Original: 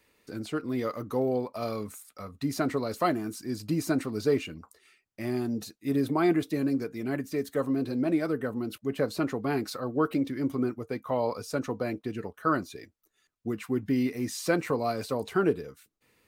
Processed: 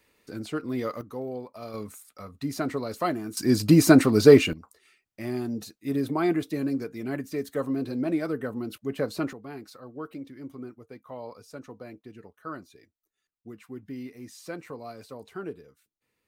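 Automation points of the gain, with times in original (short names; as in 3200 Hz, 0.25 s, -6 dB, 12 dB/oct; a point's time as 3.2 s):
+0.5 dB
from 1.01 s -7 dB
from 1.74 s -1 dB
from 3.37 s +12 dB
from 4.53 s -0.5 dB
from 9.33 s -11.5 dB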